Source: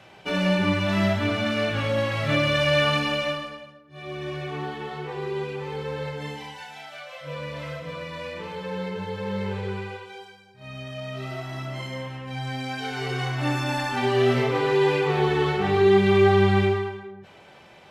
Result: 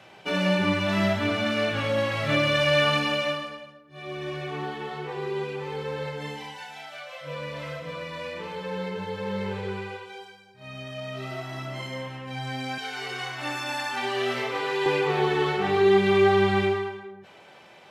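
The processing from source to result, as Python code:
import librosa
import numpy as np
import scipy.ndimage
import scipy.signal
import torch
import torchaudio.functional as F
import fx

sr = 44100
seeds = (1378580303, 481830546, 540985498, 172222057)

y = fx.highpass(x, sr, hz=fx.steps((0.0, 140.0), (12.78, 900.0), (14.86, 240.0)), slope=6)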